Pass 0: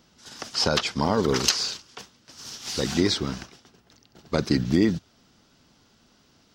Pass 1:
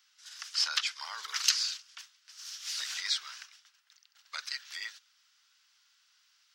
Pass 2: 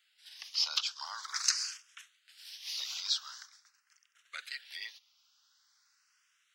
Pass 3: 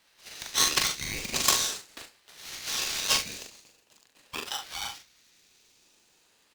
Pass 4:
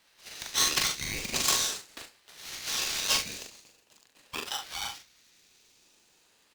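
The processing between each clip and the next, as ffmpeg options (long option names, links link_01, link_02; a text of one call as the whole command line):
ffmpeg -i in.wav -af "highpass=frequency=1400:width=0.5412,highpass=frequency=1400:width=1.3066,volume=-4dB" out.wav
ffmpeg -i in.wav -filter_complex "[0:a]asplit=2[link_01][link_02];[link_02]afreqshift=0.45[link_03];[link_01][link_03]amix=inputs=2:normalize=1" out.wav
ffmpeg -i in.wav -af "aeval=exprs='0.299*(cos(1*acos(clip(val(0)/0.299,-1,1)))-cos(1*PI/2))+0.119*(cos(4*acos(clip(val(0)/0.299,-1,1)))-cos(4*PI/2))+0.0668*(cos(5*acos(clip(val(0)/0.299,-1,1)))-cos(5*PI/2))':channel_layout=same,aecho=1:1:41|73:0.596|0.224,aeval=exprs='val(0)*sgn(sin(2*PI*1100*n/s))':channel_layout=same" out.wav
ffmpeg -i in.wav -af "asoftclip=type=tanh:threshold=-15.5dB" out.wav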